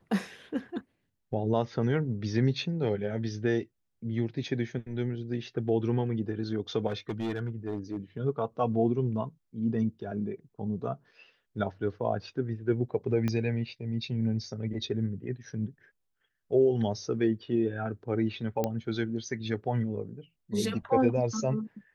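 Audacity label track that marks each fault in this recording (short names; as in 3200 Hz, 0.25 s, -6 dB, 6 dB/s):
6.870000	7.970000	clipped -27.5 dBFS
13.280000	13.280000	pop -18 dBFS
18.640000	18.640000	pop -15 dBFS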